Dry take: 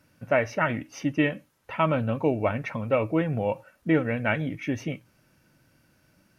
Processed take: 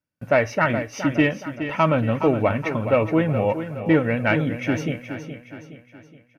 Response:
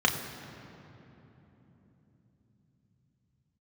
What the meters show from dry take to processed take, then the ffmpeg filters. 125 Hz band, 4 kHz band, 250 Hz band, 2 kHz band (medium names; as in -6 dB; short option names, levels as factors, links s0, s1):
+5.5 dB, +5.5 dB, +5.5 dB, +5.0 dB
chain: -filter_complex "[0:a]agate=range=0.0316:threshold=0.00178:ratio=16:detection=peak,acontrast=85,asplit=2[s0][s1];[s1]aecho=0:1:419|838|1257|1676|2095:0.316|0.142|0.064|0.0288|0.013[s2];[s0][s2]amix=inputs=2:normalize=0,volume=0.794"